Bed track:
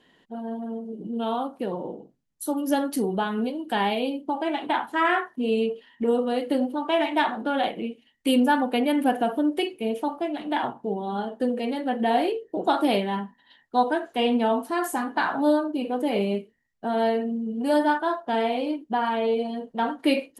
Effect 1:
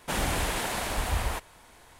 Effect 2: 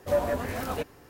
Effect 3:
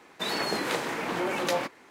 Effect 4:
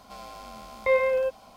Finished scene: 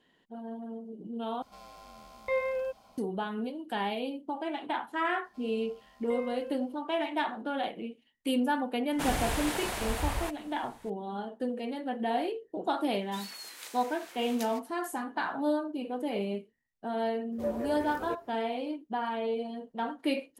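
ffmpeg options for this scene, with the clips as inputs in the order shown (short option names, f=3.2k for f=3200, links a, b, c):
-filter_complex "[4:a]asplit=2[a][b];[0:a]volume=-8dB[c];[3:a]aderivative[d];[2:a]equalizer=f=380:w=1.2:g=12[e];[c]asplit=2[f][g];[f]atrim=end=1.424[h];[a]atrim=end=1.56,asetpts=PTS-STARTPTS,volume=-8dB[i];[g]atrim=start=2.976[j];[b]atrim=end=1.56,asetpts=PTS-STARTPTS,volume=-17.5dB,afade=t=in:d=0.004:c=hsin,afade=t=out:st=1.556:d=0.004:c=hsin,adelay=5240[k];[1:a]atrim=end=1.99,asetpts=PTS-STARTPTS,volume=-3.5dB,afade=t=in:d=0.004:c=hsin,afade=t=out:st=1.986:d=0.004:c=hsin,adelay=8910[l];[d]atrim=end=1.9,asetpts=PTS-STARTPTS,volume=-6dB,afade=t=in:d=0.004:c=hsin,afade=t=out:st=1.896:d=0.004:c=hsin,adelay=12920[m];[e]atrim=end=1.09,asetpts=PTS-STARTPTS,volume=-14dB,afade=t=in:d=0.004:c=hsin,afade=t=out:st=1.086:d=0.004:c=hsin,adelay=763812S[n];[h][i]acrossfade=d=0.004:c1=hsin:c2=hsin[o];[o][j]acrossfade=d=0.004:c1=hsin:c2=hsin[p];[p][k][l][m][n]amix=inputs=5:normalize=0"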